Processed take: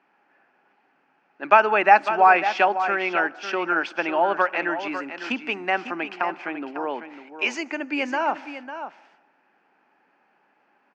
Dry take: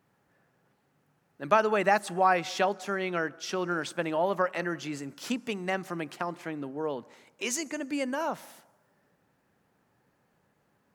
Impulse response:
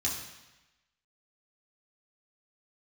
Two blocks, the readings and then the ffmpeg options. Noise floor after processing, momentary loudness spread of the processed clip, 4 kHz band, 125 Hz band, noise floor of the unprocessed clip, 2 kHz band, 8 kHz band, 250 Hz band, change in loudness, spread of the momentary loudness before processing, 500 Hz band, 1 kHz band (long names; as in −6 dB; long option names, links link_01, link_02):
−66 dBFS, 17 LU, +4.5 dB, −8.0 dB, −71 dBFS, +10.0 dB, can't be measured, +2.5 dB, +7.5 dB, 12 LU, +4.5 dB, +9.5 dB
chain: -af "highpass=frequency=260:width=0.5412,highpass=frequency=260:width=1.3066,equalizer=frequency=490:width_type=q:width=4:gain=-6,equalizer=frequency=820:width_type=q:width=4:gain=7,equalizer=frequency=1500:width_type=q:width=4:gain=5,equalizer=frequency=2500:width_type=q:width=4:gain=9,equalizer=frequency=3800:width_type=q:width=4:gain=-9,lowpass=frequency=4500:width=0.5412,lowpass=frequency=4500:width=1.3066,aecho=1:1:550:0.299,volume=5dB"